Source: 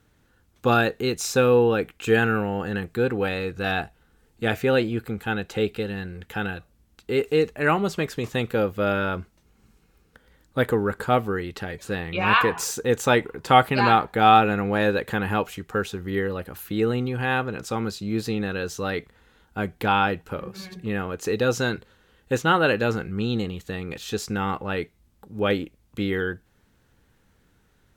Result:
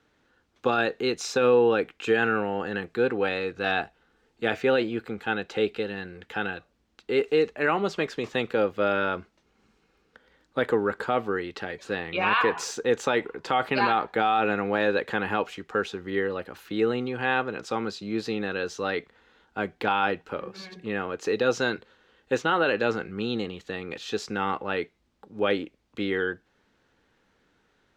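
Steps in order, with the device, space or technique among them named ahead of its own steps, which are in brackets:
DJ mixer with the lows and highs turned down (three-way crossover with the lows and the highs turned down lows −13 dB, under 230 Hz, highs −20 dB, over 6,300 Hz; brickwall limiter −12.5 dBFS, peak gain reduction 10 dB)

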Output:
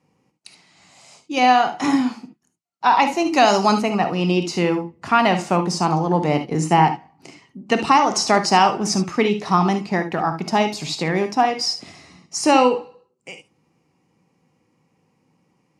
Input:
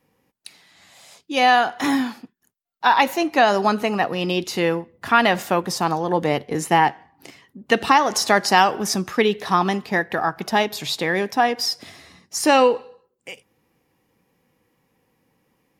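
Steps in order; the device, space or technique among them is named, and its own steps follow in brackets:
0:03.26–0:03.82: high-shelf EQ 3,500 Hz +12 dB
car door speaker (loudspeaker in its box 81–8,400 Hz, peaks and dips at 160 Hz +6 dB, 500 Hz −4 dB, 1,700 Hz −9 dB, 3,500 Hz −9 dB)
reverb whose tail is shaped and stops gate 90 ms rising, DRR 8 dB
level +1.5 dB

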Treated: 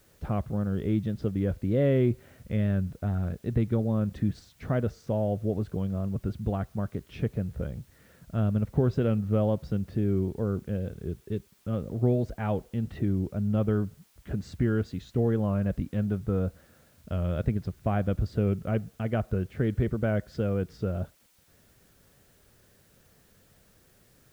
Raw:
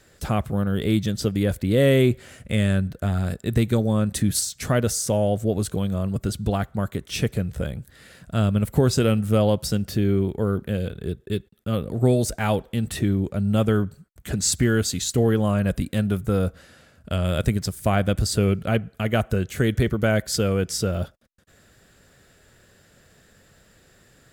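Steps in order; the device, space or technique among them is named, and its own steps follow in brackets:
cassette deck with a dirty head (head-to-tape spacing loss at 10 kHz 43 dB; tape wow and flutter; white noise bed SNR 36 dB)
level −4.5 dB

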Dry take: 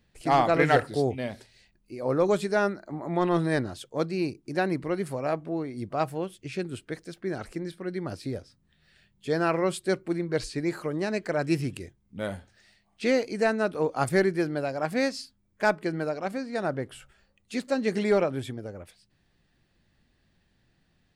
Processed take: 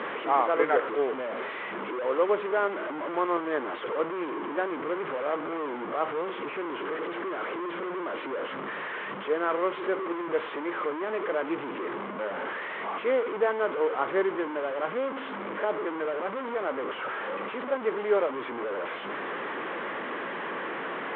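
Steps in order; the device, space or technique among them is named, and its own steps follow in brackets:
0:14.91–0:15.85: treble cut that deepens with the level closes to 650 Hz, closed at −23.5 dBFS
digital answering machine (band-pass filter 320–3,300 Hz; linear delta modulator 16 kbit/s, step −25 dBFS; loudspeaker in its box 350–3,000 Hz, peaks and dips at 450 Hz +4 dB, 720 Hz −5 dB, 1,100 Hz +5 dB, 1,800 Hz −4 dB, 2,600 Hz −9 dB)

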